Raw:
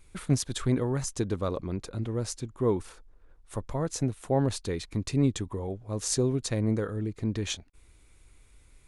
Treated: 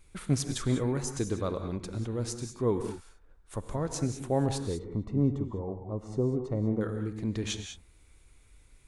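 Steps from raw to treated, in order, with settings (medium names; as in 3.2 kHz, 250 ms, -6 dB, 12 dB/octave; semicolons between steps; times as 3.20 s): 4.64–6.81 s: Savitzky-Golay filter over 65 samples; gated-style reverb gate 220 ms rising, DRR 7 dB; trim -2 dB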